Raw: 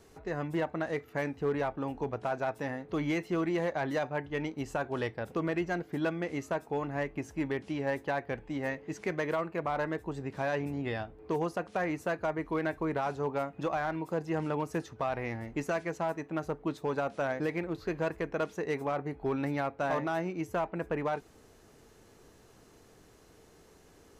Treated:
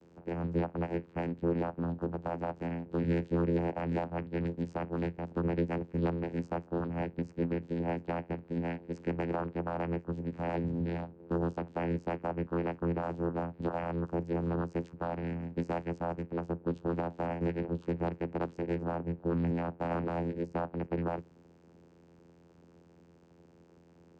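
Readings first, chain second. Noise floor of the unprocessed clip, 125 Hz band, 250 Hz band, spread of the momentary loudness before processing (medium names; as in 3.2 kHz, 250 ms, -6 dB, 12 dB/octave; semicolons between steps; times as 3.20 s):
-59 dBFS, +4.0 dB, +1.0 dB, 4 LU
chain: octave divider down 1 oct, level -5 dB; vocoder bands 8, saw 85 Hz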